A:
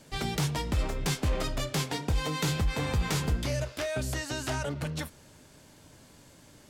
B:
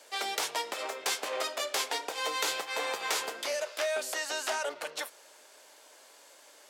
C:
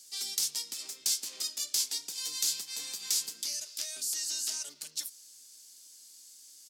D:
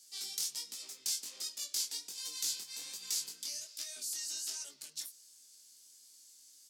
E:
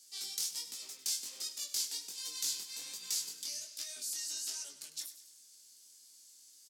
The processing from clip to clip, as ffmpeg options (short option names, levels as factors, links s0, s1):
-af "highpass=f=480:w=0.5412,highpass=f=480:w=1.3066,volume=1.33"
-af "firequalizer=gain_entry='entry(160,0);entry(530,-28);entry(4900,6)':delay=0.05:min_phase=1"
-af "flanger=delay=17:depth=7.8:speed=1.3,volume=0.75"
-af "aecho=1:1:100|200|300|400|500:0.211|0.101|0.0487|0.0234|0.0112"